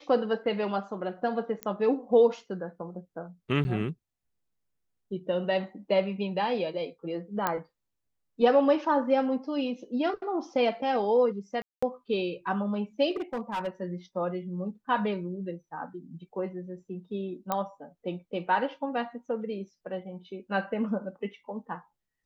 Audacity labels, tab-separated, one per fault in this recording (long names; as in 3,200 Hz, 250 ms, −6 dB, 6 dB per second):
1.630000	1.630000	click −18 dBFS
3.640000	3.650000	drop-out 10 ms
7.470000	7.470000	click −12 dBFS
11.620000	11.820000	drop-out 205 ms
13.110000	13.680000	clipping −27.5 dBFS
17.520000	17.520000	click −14 dBFS